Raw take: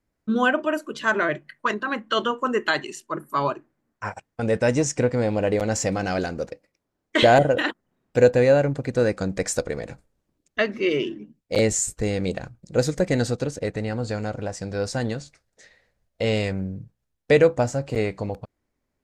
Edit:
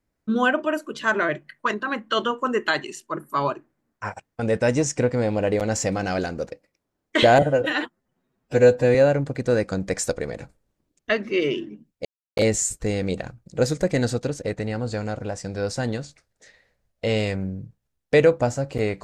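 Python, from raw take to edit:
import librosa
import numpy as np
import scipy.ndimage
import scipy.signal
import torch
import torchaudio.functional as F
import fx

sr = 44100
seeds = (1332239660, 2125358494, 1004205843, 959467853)

y = fx.edit(x, sr, fx.stretch_span(start_s=7.42, length_s=1.02, factor=1.5),
    fx.insert_silence(at_s=11.54, length_s=0.32), tone=tone)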